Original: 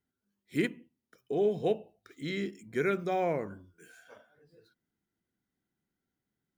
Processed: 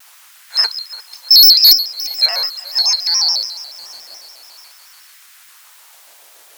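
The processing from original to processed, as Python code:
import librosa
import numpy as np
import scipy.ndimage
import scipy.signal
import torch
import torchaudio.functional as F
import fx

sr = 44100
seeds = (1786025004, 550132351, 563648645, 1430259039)

p1 = fx.band_shuffle(x, sr, order='2341')
p2 = fx.high_shelf_res(p1, sr, hz=1900.0, db=11.5, q=1.5, at=(0.74, 2.26))
p3 = fx.quant_dither(p2, sr, seeds[0], bits=8, dither='triangular')
p4 = p2 + (p3 * librosa.db_to_amplitude(-7.5))
p5 = fx.fold_sine(p4, sr, drive_db=9, ceiling_db=-1.0)
p6 = fx.filter_lfo_highpass(p5, sr, shape='sine', hz=0.43, low_hz=560.0, high_hz=1500.0, q=1.6)
p7 = p6 + fx.echo_feedback(p6, sr, ms=340, feedback_pct=60, wet_db=-18.0, dry=0)
p8 = fx.vibrato_shape(p7, sr, shape='square', rate_hz=7.0, depth_cents=160.0)
y = p8 * librosa.db_to_amplitude(-2.0)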